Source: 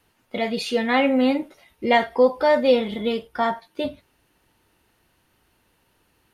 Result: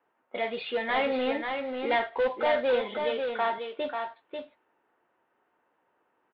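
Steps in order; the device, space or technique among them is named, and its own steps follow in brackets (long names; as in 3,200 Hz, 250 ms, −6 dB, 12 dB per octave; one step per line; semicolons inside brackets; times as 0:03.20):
carbon microphone (band-pass filter 440–3,300 Hz; soft clipping −19 dBFS, distortion −10 dB; noise that follows the level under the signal 16 dB)
low-pass that shuts in the quiet parts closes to 1,300 Hz, open at −23.5 dBFS
0:03.04–0:03.53: high-pass filter 290 Hz 12 dB per octave
elliptic low-pass filter 3,700 Hz, stop band 60 dB
single-tap delay 541 ms −5.5 dB
level −1.5 dB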